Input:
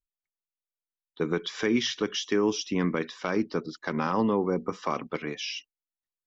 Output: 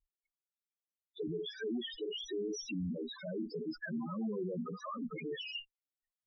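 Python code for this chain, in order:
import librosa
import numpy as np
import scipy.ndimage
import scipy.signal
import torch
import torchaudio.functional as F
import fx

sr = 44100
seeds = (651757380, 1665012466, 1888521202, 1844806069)

y = fx.tube_stage(x, sr, drive_db=43.0, bias=0.4)
y = fx.spec_topn(y, sr, count=4)
y = F.gain(torch.from_numpy(y), 10.0).numpy()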